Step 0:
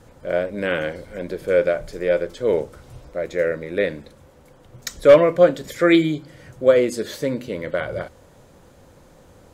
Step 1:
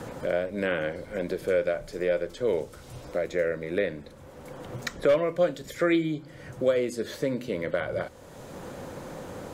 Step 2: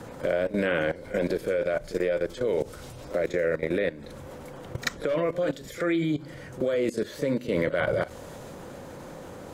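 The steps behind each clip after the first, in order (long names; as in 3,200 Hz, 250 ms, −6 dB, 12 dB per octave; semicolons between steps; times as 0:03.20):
multiband upward and downward compressor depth 70%; level −6 dB
output level in coarse steps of 17 dB; echo ahead of the sound 36 ms −14 dB; level +9 dB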